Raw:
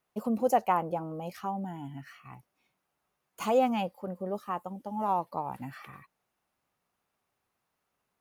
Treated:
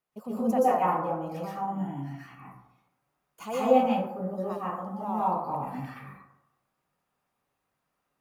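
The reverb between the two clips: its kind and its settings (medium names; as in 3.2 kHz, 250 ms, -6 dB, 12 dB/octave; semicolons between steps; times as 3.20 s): plate-style reverb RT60 0.82 s, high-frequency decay 0.4×, pre-delay 110 ms, DRR -8.5 dB; trim -7.5 dB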